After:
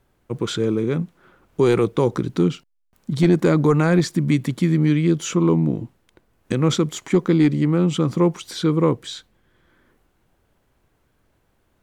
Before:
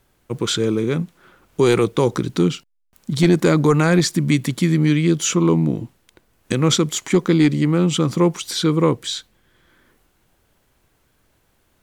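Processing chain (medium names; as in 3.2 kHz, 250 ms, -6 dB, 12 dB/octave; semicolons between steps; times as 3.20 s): treble shelf 2.3 kHz -8.5 dB; trim -1 dB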